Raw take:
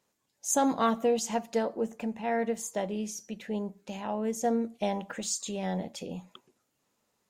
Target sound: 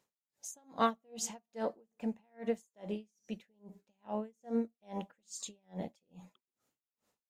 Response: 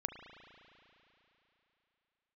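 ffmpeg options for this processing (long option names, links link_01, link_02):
-af "aeval=exprs='val(0)*pow(10,-40*(0.5-0.5*cos(2*PI*2.4*n/s))/20)':channel_layout=same,volume=-1.5dB"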